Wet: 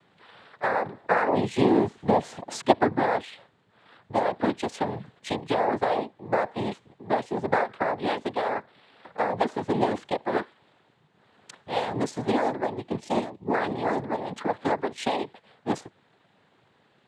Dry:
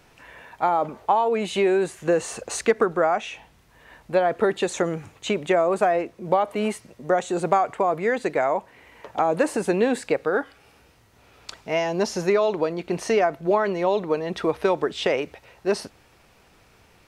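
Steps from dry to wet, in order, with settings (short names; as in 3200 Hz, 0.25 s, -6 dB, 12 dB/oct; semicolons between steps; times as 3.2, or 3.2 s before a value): Wiener smoothing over 9 samples; 1.03–3.23 low shelf 330 Hz +8.5 dB; 12.99–13.5 spectral gain 490–2300 Hz -14 dB; noise vocoder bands 6; gain -4 dB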